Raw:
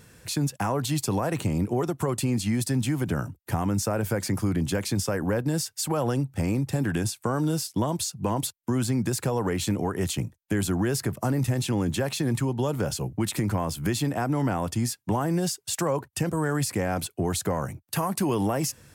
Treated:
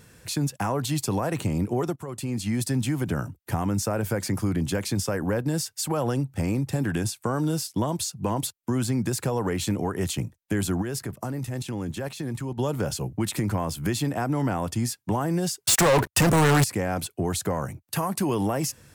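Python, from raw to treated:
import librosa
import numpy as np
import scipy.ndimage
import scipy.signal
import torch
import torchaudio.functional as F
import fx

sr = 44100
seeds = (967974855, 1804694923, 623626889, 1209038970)

y = fx.level_steps(x, sr, step_db=10, at=(10.81, 12.57), fade=0.02)
y = fx.leveller(y, sr, passes=5, at=(15.66, 16.64))
y = fx.edit(y, sr, fx.fade_in_from(start_s=1.96, length_s=0.65, floor_db=-13.5), tone=tone)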